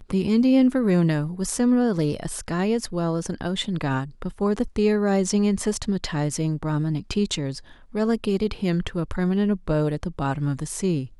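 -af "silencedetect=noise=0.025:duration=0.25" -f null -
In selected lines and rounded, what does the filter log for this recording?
silence_start: 7.58
silence_end: 7.95 | silence_duration: 0.36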